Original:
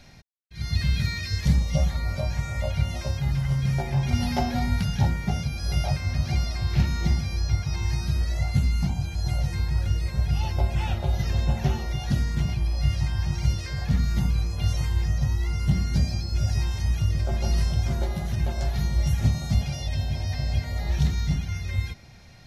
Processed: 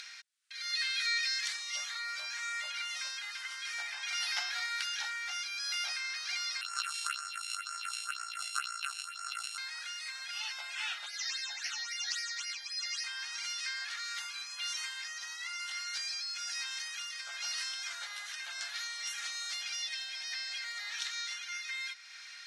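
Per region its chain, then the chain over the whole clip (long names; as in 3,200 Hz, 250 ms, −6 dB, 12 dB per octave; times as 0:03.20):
0:06.61–0:09.58: samples sorted by size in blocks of 32 samples + all-pass phaser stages 4, 2 Hz, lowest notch 190–3,500 Hz
0:11.06–0:13.04: all-pass phaser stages 8, 3.7 Hz, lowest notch 340–1,100 Hz + parametric band 6,500 Hz +8 dB 1.3 octaves
whole clip: elliptic band-pass filter 1,400–9,300 Hz, stop band 70 dB; upward compression, threshold −44 dBFS; level +3 dB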